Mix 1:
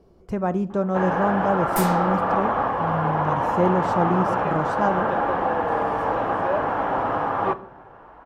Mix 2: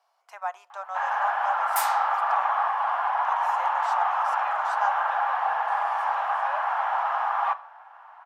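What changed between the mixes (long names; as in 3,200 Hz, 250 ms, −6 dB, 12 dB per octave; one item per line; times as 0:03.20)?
speech: send −9.0 dB
master: add Butterworth high-pass 730 Hz 48 dB per octave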